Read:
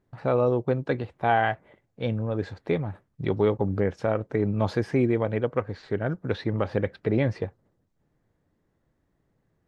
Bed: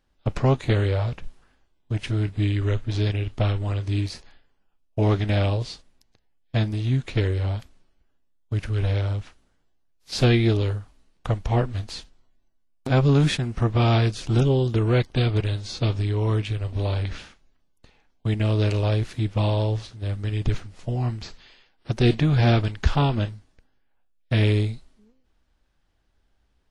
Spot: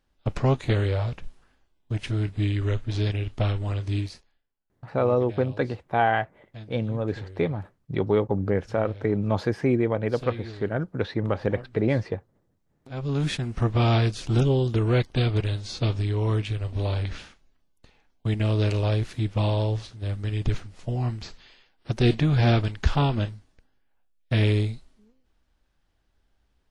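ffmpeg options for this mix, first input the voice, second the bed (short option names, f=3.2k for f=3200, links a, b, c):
-filter_complex "[0:a]adelay=4700,volume=0.5dB[a];[1:a]volume=15.5dB,afade=t=out:st=3.96:d=0.31:silence=0.141254,afade=t=in:st=12.9:d=0.64:silence=0.133352[b];[a][b]amix=inputs=2:normalize=0"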